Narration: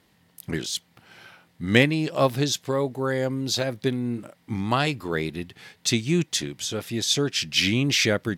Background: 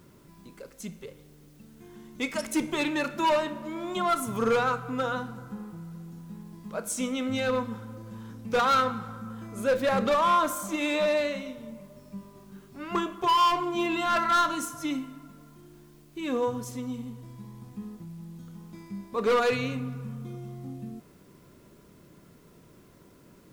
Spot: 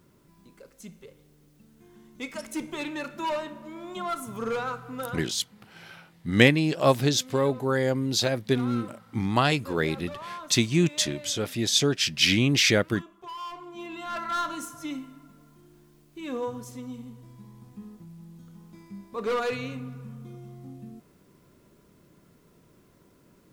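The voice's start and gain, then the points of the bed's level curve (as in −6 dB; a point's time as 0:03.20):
4.65 s, +0.5 dB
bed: 0:05.07 −5.5 dB
0:05.38 −17 dB
0:13.33 −17 dB
0:14.54 −4 dB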